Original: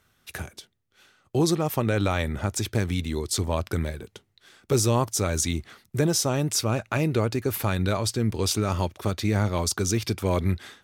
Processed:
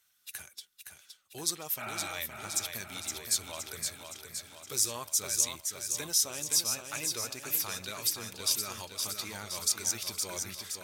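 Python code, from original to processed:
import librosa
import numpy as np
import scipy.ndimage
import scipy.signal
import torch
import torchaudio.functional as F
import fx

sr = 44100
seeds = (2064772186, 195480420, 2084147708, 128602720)

p1 = fx.spec_quant(x, sr, step_db=15)
p2 = F.preemphasis(torch.from_numpy(p1), 0.97).numpy()
p3 = fx.spec_repair(p2, sr, seeds[0], start_s=1.8, length_s=0.3, low_hz=310.0, high_hz=2900.0, source='after')
p4 = fx.high_shelf(p3, sr, hz=5800.0, db=-4.5)
p5 = p4 + fx.echo_feedback(p4, sr, ms=517, feedback_pct=58, wet_db=-6, dry=0)
y = p5 * librosa.db_to_amplitude(3.5)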